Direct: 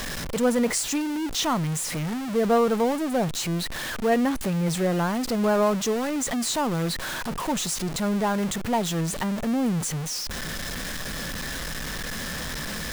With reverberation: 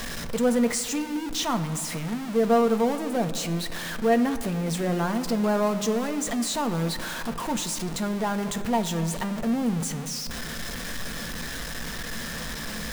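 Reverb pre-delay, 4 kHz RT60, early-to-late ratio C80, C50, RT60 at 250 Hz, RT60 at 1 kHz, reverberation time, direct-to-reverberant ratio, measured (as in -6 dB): 4 ms, 1.2 s, 12.5 dB, 11.5 dB, 2.9 s, 2.3 s, 2.4 s, 7.5 dB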